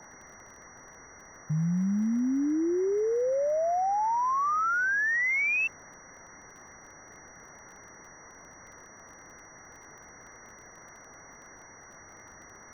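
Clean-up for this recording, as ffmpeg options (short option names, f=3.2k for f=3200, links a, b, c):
-af "adeclick=t=4,bandreject=f=5.8k:w=30,afwtdn=0.0079"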